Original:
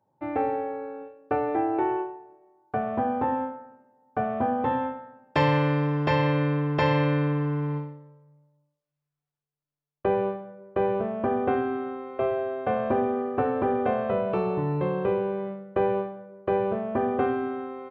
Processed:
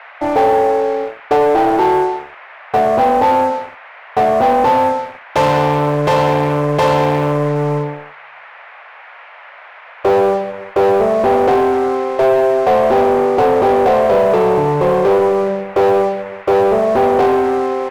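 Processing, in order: waveshaping leveller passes 5; high-order bell 630 Hz +8 dB; band noise 590–2300 Hz -33 dBFS; trim -5 dB

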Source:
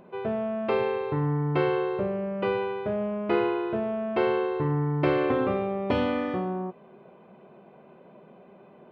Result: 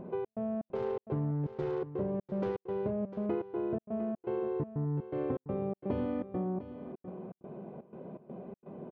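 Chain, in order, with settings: 0.75–2.91 s: self-modulated delay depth 0.31 ms; tilt shelf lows +10 dB; compression 4:1, threshold -33 dBFS, peak gain reduction 17.5 dB; trance gate "xx.xx.xx.xxx." 123 bpm -60 dB; delay 701 ms -13 dB

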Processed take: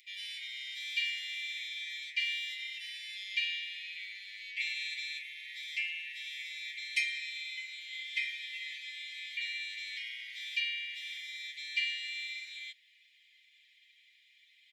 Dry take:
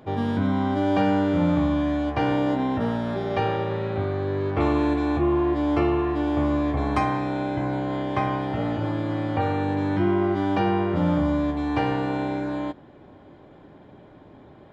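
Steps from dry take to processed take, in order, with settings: steep high-pass 2 kHz 96 dB/octave; comb 6.3 ms, depth 88%; trim +2.5 dB

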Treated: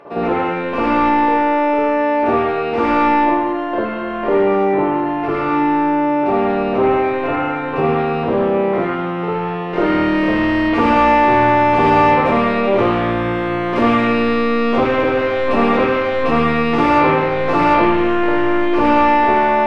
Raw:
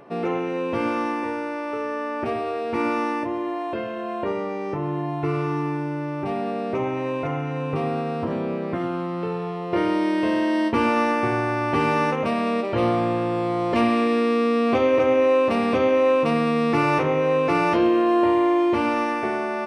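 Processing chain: 3.23–4.15 s: peaking EQ 2.4 kHz -12 dB 0.21 oct; overdrive pedal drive 19 dB, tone 2.2 kHz, clips at -8.5 dBFS; reverberation, pre-delay 50 ms, DRR -8 dB; trim -6 dB

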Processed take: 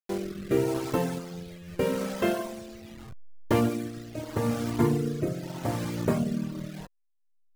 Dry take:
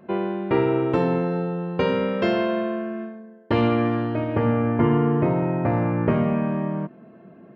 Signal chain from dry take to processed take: send-on-delta sampling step -27 dBFS; rotary cabinet horn 0.8 Hz; reverb removal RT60 1.5 s; trim -2 dB

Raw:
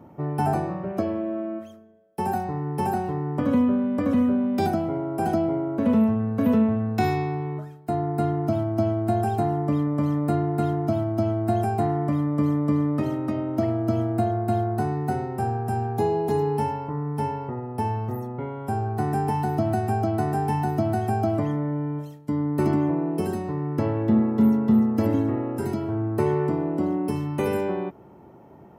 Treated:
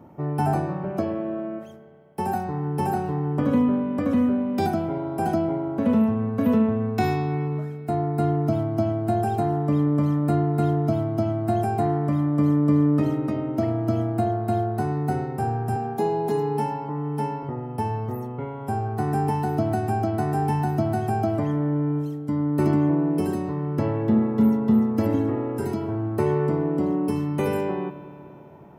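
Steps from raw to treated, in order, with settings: 15.76–17.43 s: steep high-pass 150 Hz; spring tank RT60 3.2 s, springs 34/49 ms, chirp 35 ms, DRR 12 dB

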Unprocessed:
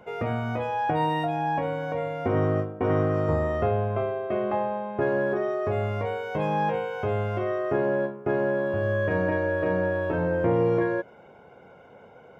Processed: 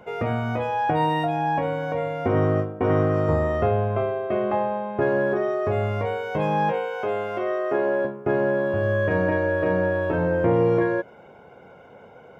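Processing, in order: 6.72–8.05 s: high-pass 300 Hz 12 dB/octave; trim +3 dB

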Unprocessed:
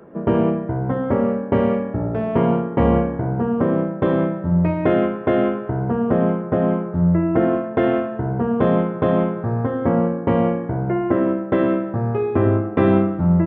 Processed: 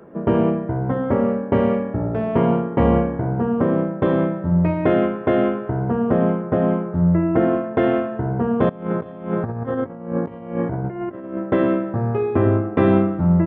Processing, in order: 8.69–11.38 s: compressor with a negative ratio -25 dBFS, ratio -0.5

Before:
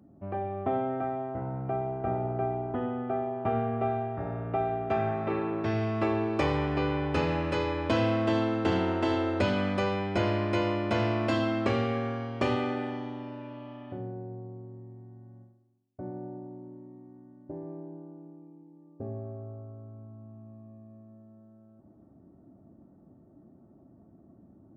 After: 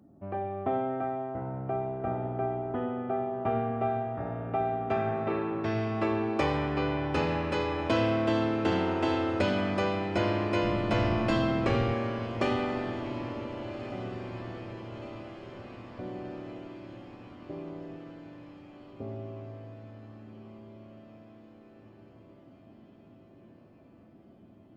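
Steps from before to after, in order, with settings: 10.62–11.94 s: octave divider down 1 oct, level 0 dB; bass shelf 160 Hz -3.5 dB; on a send: echo that smears into a reverb 1504 ms, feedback 63%, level -13 dB

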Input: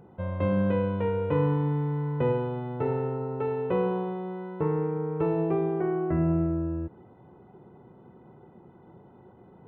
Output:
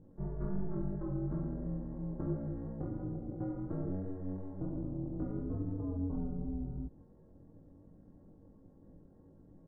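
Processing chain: compression 2:1, threshold -32 dBFS, peak gain reduction 7 dB; pitch shift -12 st; ring modulator 95 Hz; chorus 2.9 Hz, delay 18.5 ms, depth 3.1 ms; trim +1 dB

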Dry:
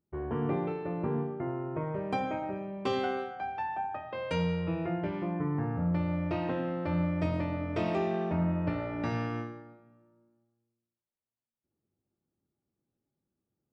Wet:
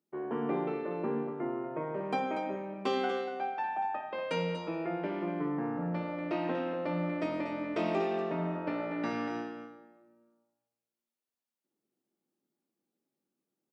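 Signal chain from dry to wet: high-pass 200 Hz 24 dB/octave; delay 239 ms -8.5 dB

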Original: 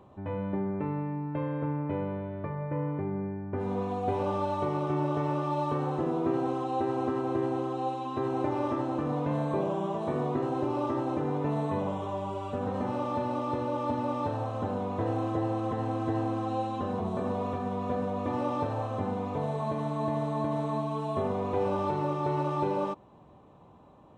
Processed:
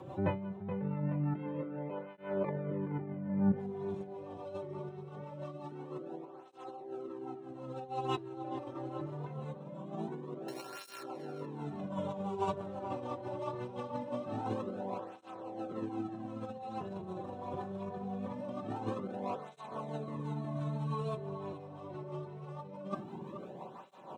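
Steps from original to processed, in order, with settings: 10.48–11.03 s: sorted samples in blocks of 32 samples; high-pass 94 Hz 24 dB/octave; band-stop 1.2 kHz, Q 19; comb 5.3 ms, depth 47%; de-hum 314.9 Hz, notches 27; compressor with a negative ratio -37 dBFS, ratio -0.5; rotary cabinet horn 6 Hz; on a send: filtered feedback delay 426 ms, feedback 50%, low-pass 3.6 kHz, level -9 dB; on the sum: cancelling through-zero flanger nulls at 0.23 Hz, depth 4.9 ms; trim +4.5 dB

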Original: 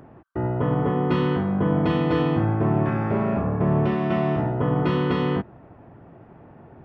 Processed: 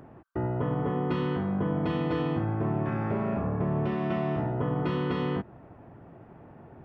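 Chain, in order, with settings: compression 2.5:1, threshold -24 dBFS, peak gain reduction 5.5 dB; trim -2.5 dB

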